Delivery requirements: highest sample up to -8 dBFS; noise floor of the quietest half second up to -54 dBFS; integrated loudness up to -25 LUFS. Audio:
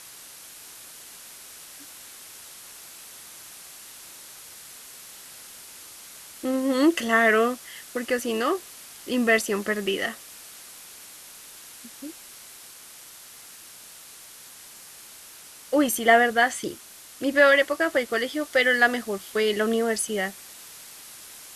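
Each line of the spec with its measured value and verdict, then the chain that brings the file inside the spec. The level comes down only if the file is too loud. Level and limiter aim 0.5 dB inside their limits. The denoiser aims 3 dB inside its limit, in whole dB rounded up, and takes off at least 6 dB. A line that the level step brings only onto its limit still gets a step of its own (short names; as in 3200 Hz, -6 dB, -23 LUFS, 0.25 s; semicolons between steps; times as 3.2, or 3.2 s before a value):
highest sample -5.0 dBFS: fail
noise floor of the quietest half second -46 dBFS: fail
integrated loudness -23.0 LUFS: fail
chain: denoiser 9 dB, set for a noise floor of -46 dBFS; gain -2.5 dB; limiter -8.5 dBFS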